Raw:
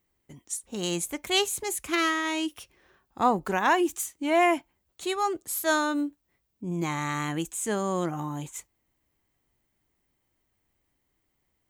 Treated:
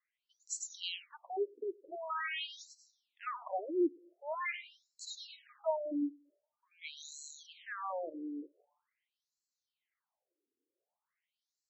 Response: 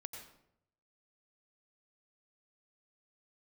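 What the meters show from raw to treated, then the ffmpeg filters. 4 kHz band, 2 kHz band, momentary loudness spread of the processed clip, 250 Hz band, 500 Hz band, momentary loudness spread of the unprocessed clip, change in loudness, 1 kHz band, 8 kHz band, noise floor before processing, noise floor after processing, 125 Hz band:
-12.5 dB, -13.5 dB, 14 LU, -11.5 dB, -10.0 dB, 11 LU, -12.0 dB, -15.0 dB, -14.0 dB, -76 dBFS, under -85 dBFS, under -40 dB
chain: -filter_complex "[0:a]asoftclip=type=tanh:threshold=0.15,asplit=2[s0][s1];[s1]aderivative[s2];[1:a]atrim=start_sample=2205,adelay=102[s3];[s2][s3]afir=irnorm=-1:irlink=0,volume=1.41[s4];[s0][s4]amix=inputs=2:normalize=0,afftfilt=real='re*between(b*sr/1024,350*pow(5700/350,0.5+0.5*sin(2*PI*0.45*pts/sr))/1.41,350*pow(5700/350,0.5+0.5*sin(2*PI*0.45*pts/sr))*1.41)':imag='im*between(b*sr/1024,350*pow(5700/350,0.5+0.5*sin(2*PI*0.45*pts/sr))/1.41,350*pow(5700/350,0.5+0.5*sin(2*PI*0.45*pts/sr))*1.41)':win_size=1024:overlap=0.75,volume=0.668"

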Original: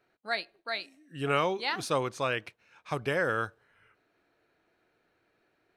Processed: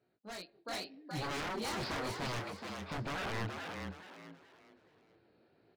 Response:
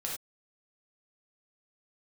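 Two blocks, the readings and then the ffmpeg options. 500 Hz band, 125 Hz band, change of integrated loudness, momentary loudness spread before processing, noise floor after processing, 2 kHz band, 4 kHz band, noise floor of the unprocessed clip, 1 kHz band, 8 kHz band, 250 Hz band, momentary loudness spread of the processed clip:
-11.0 dB, -3.0 dB, -8.5 dB, 9 LU, -73 dBFS, -8.5 dB, -5.0 dB, -74 dBFS, -7.5 dB, -2.0 dB, -3.5 dB, 13 LU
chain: -filter_complex "[0:a]flanger=delay=16.5:depth=7:speed=0.86,highpass=110,asplit=2[s0][s1];[s1]acompressor=threshold=0.00794:ratio=6,volume=0.708[s2];[s0][s2]amix=inputs=2:normalize=0,equalizer=f=1800:t=o:w=2.5:g=-10,volume=26.6,asoftclip=hard,volume=0.0376,aresample=11025,aresample=44100,lowshelf=f=140:g=11,aeval=exprs='0.015*(abs(mod(val(0)/0.015+3,4)-2)-1)':c=same,asplit=2[s3][s4];[s4]asplit=4[s5][s6][s7][s8];[s5]adelay=423,afreqshift=83,volume=0.562[s9];[s6]adelay=846,afreqshift=166,volume=0.18[s10];[s7]adelay=1269,afreqshift=249,volume=0.0575[s11];[s8]adelay=1692,afreqshift=332,volume=0.0184[s12];[s9][s10][s11][s12]amix=inputs=4:normalize=0[s13];[s3][s13]amix=inputs=2:normalize=0,dynaudnorm=f=160:g=7:m=2.24,volume=0.631"

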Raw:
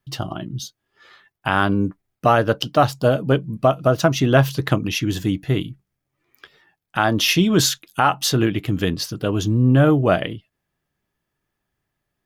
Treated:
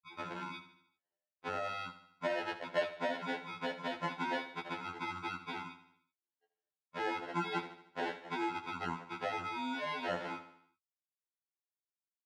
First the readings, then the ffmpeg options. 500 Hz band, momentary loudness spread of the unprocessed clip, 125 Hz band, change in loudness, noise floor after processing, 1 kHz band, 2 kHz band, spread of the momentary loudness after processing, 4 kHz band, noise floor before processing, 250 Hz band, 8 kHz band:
-19.5 dB, 13 LU, -32.0 dB, -19.5 dB, under -85 dBFS, -15.5 dB, -14.5 dB, 9 LU, -20.5 dB, -79 dBFS, -23.0 dB, -32.5 dB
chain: -filter_complex "[0:a]aemphasis=mode=reproduction:type=riaa,afftdn=nr=26:nf=-26,equalizer=f=1200:w=1:g=-8,acompressor=threshold=0.2:ratio=20,acrusher=samples=37:mix=1:aa=0.000001,highpass=520,lowpass=2500,asplit=2[s0][s1];[s1]aecho=0:1:76|152|228|304|380:0.224|0.114|0.0582|0.0297|0.0151[s2];[s0][s2]amix=inputs=2:normalize=0,afftfilt=real='re*2*eq(mod(b,4),0)':imag='im*2*eq(mod(b,4),0)':win_size=2048:overlap=0.75,volume=0.501"

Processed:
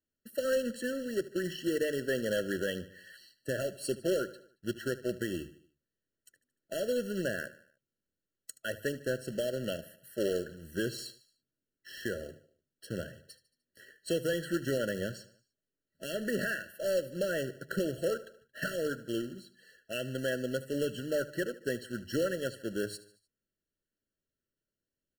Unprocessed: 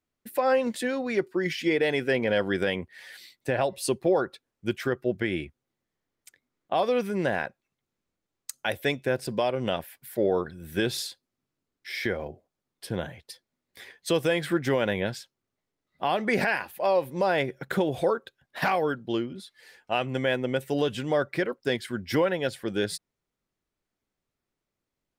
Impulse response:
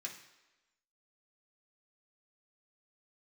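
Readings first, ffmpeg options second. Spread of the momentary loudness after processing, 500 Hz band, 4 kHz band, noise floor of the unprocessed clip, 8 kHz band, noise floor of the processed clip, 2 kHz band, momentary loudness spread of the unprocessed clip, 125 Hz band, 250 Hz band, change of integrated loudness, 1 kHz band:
11 LU, -6.5 dB, -7.0 dB, under -85 dBFS, -3.0 dB, under -85 dBFS, -7.5 dB, 12 LU, -7.0 dB, -6.5 dB, -7.0 dB, -18.5 dB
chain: -filter_complex "[0:a]acrusher=bits=2:mode=log:mix=0:aa=0.000001,bandreject=f=50:t=h:w=6,bandreject=f=100:t=h:w=6,bandreject=f=150:t=h:w=6,asplit=2[s0][s1];[s1]aecho=0:1:75|150|225|300:0.141|0.0706|0.0353|0.0177[s2];[s0][s2]amix=inputs=2:normalize=0,afftfilt=real='re*eq(mod(floor(b*sr/1024/660),2),0)':imag='im*eq(mod(floor(b*sr/1024/660),2),0)':win_size=1024:overlap=0.75,volume=0.473"

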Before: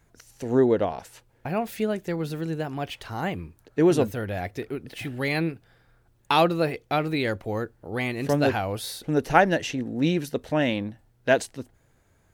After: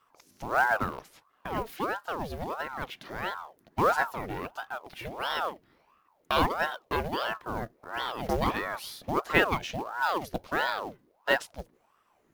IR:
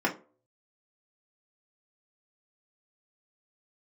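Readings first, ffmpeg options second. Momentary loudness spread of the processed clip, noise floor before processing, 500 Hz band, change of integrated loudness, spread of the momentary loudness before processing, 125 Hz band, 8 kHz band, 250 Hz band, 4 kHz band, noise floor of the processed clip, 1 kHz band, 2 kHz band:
13 LU, -63 dBFS, -8.0 dB, -5.0 dB, 13 LU, -10.0 dB, -7.0 dB, -11.5 dB, -2.0 dB, -69 dBFS, -1.0 dB, +0.5 dB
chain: -af "acrusher=bits=5:mode=log:mix=0:aa=0.000001,equalizer=f=8000:w=2.2:g=-7,aeval=exprs='val(0)*sin(2*PI*720*n/s+720*0.7/1.5*sin(2*PI*1.5*n/s))':c=same,volume=0.75"

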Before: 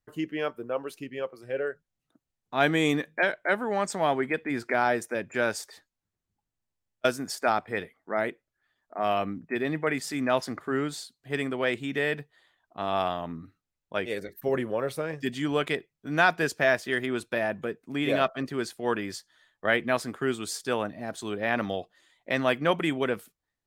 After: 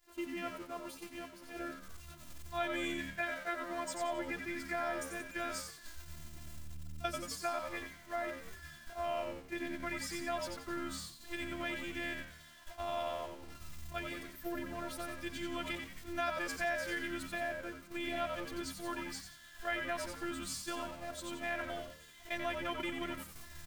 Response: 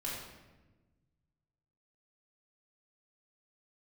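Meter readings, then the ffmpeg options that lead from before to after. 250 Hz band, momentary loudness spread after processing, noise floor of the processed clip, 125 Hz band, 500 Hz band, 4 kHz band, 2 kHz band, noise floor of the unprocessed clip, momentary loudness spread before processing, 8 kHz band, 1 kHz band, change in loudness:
-11.5 dB, 14 LU, -56 dBFS, -13.5 dB, -13.0 dB, -8.0 dB, -10.5 dB, under -85 dBFS, 10 LU, -5.0 dB, -10.0 dB, -11.0 dB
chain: -filter_complex "[0:a]aeval=exprs='val(0)+0.5*0.0158*sgn(val(0))':c=same,afftfilt=real='hypot(re,im)*cos(PI*b)':imag='0':win_size=512:overlap=0.75,asubboost=boost=4:cutoff=160,asplit=6[s0][s1][s2][s3][s4][s5];[s1]adelay=89,afreqshift=-77,volume=0.531[s6];[s2]adelay=178,afreqshift=-154,volume=0.229[s7];[s3]adelay=267,afreqshift=-231,volume=0.0977[s8];[s4]adelay=356,afreqshift=-308,volume=0.0422[s9];[s5]adelay=445,afreqshift=-385,volume=0.0182[s10];[s0][s6][s7][s8][s9][s10]amix=inputs=6:normalize=0,agate=range=0.0224:threshold=0.0316:ratio=3:detection=peak,acompressor=threshold=0.00398:ratio=2,lowshelf=f=330:g=-7.5,volume=1.78"

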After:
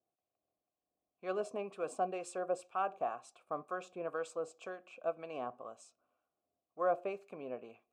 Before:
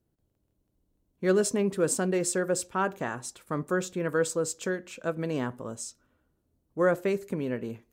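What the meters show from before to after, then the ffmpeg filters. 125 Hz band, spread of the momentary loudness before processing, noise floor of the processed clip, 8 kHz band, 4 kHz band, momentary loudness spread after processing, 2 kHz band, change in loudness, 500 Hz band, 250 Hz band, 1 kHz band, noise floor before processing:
-23.5 dB, 10 LU, under -85 dBFS, -22.5 dB, -16.5 dB, 12 LU, -14.0 dB, -10.5 dB, -10.0 dB, -18.5 dB, -3.0 dB, -76 dBFS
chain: -filter_complex "[0:a]acrossover=split=1100[s0][s1];[s0]aeval=exprs='val(0)*(1-0.5/2+0.5/2*cos(2*PI*2*n/s))':c=same[s2];[s1]aeval=exprs='val(0)*(1-0.5/2-0.5/2*cos(2*PI*2*n/s))':c=same[s3];[s2][s3]amix=inputs=2:normalize=0,adynamicequalizer=threshold=0.00282:dfrequency=9100:dqfactor=1.5:tfrequency=9100:tqfactor=1.5:attack=5:release=100:ratio=0.375:range=3:mode=boostabove:tftype=bell,asplit=3[s4][s5][s6];[s4]bandpass=f=730:t=q:w=8,volume=1[s7];[s5]bandpass=f=1090:t=q:w=8,volume=0.501[s8];[s6]bandpass=f=2440:t=q:w=8,volume=0.355[s9];[s7][s8][s9]amix=inputs=3:normalize=0,volume=2"

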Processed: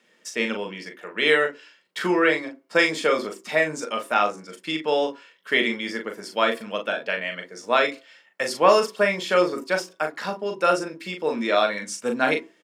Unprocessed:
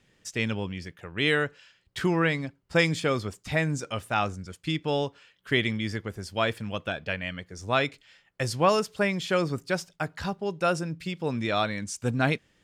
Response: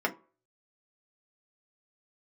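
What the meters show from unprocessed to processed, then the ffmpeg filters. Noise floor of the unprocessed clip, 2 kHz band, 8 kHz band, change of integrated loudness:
-67 dBFS, +5.5 dB, +3.0 dB, +5.0 dB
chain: -filter_complex "[0:a]highpass=f=240:w=0.5412,highpass=f=240:w=1.3066,asplit=2[s0][s1];[s1]adelay=39,volume=0.501[s2];[s0][s2]amix=inputs=2:normalize=0,asplit=2[s3][s4];[1:a]atrim=start_sample=2205[s5];[s4][s5]afir=irnorm=-1:irlink=0,volume=0.266[s6];[s3][s6]amix=inputs=2:normalize=0,volume=1.12"

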